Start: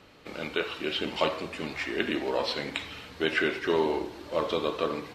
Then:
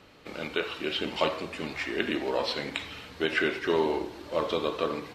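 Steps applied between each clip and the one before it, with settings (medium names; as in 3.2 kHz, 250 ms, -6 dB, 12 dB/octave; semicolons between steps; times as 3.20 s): endings held to a fixed fall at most 260 dB/s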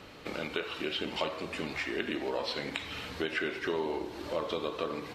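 compression 2.5:1, threshold -40 dBFS, peak gain reduction 13 dB; trim +5 dB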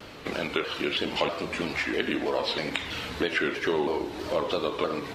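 vibrato with a chosen wave saw down 3.1 Hz, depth 160 cents; trim +6 dB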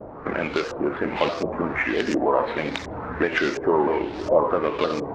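median filter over 15 samples; LFO low-pass saw up 1.4 Hz 590–6300 Hz; trim +5 dB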